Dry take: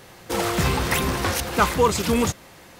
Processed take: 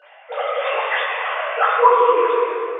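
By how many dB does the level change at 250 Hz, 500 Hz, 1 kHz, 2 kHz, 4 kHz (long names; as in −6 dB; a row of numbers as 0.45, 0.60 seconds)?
below −10 dB, +6.5 dB, +8.0 dB, +4.5 dB, −3.0 dB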